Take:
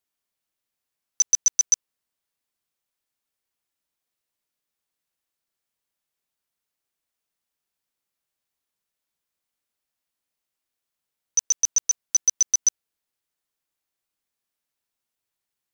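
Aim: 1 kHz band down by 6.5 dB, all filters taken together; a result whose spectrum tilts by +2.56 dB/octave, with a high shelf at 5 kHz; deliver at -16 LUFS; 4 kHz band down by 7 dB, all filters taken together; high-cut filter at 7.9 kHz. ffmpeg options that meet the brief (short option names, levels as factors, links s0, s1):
-af "lowpass=7900,equalizer=f=1000:t=o:g=-8,equalizer=f=4000:t=o:g=-4,highshelf=f=5000:g=-7.5,volume=4.22"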